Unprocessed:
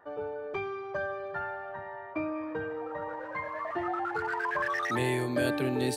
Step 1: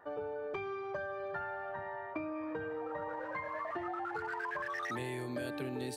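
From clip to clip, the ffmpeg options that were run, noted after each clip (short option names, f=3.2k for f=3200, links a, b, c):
-af "acompressor=threshold=-36dB:ratio=6"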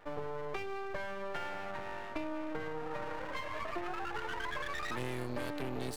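-af "aeval=exprs='max(val(0),0)':c=same,volume=4dB"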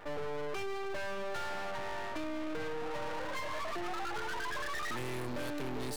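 -af "asoftclip=type=tanh:threshold=-38dB,volume=7.5dB"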